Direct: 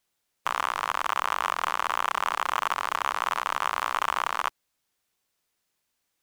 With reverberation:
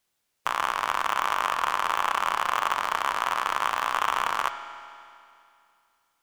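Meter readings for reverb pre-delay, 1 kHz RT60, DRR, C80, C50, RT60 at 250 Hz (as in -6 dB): 5 ms, 2.5 s, 7.5 dB, 9.5 dB, 9.0 dB, 2.5 s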